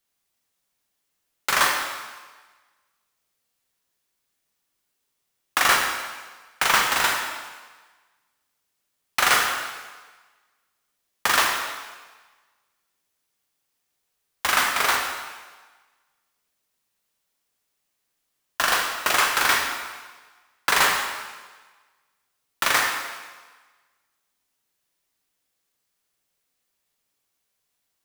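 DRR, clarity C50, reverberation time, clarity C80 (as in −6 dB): 0.5 dB, 2.5 dB, 1.4 s, 4.5 dB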